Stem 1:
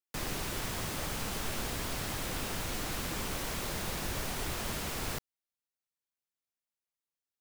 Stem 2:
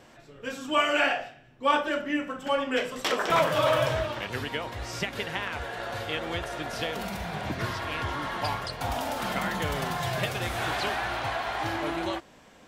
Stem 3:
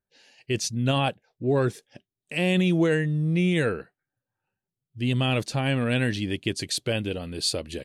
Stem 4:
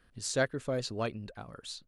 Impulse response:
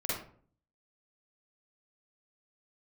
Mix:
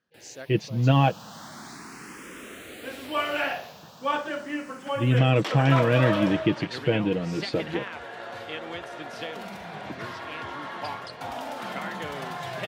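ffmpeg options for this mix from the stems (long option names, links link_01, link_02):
-filter_complex "[0:a]asplit=2[link_01][link_02];[link_02]afreqshift=0.36[link_03];[link_01][link_03]amix=inputs=2:normalize=1,afade=type=in:start_time=0.68:duration=0.73:silence=0.266073,afade=type=out:start_time=3.31:duration=0.54:silence=0.446684[link_04];[1:a]adelay=2400,volume=-3dB[link_05];[2:a]lowpass=2700,lowshelf=frequency=220:gain=11.5,aecho=1:1:6.2:0.65,volume=0.5dB,asplit=3[link_06][link_07][link_08];[link_06]atrim=end=1.26,asetpts=PTS-STARTPTS,afade=type=out:start_time=1.256:duration=0.004:curve=hsin[link_09];[link_07]atrim=start=1.26:end=3.83,asetpts=PTS-STARTPTS,volume=0[link_10];[link_08]atrim=start=3.83,asetpts=PTS-STARTPTS,afade=type=in:duration=0.004:curve=hsin[link_11];[link_09][link_10][link_11]concat=n=3:v=0:a=1[link_12];[3:a]lowpass=frequency=6400:width_type=q:width=4.9,volume=-13dB[link_13];[link_04][link_05][link_12][link_13]amix=inputs=4:normalize=0,highpass=170,highshelf=frequency=6400:gain=-9.5"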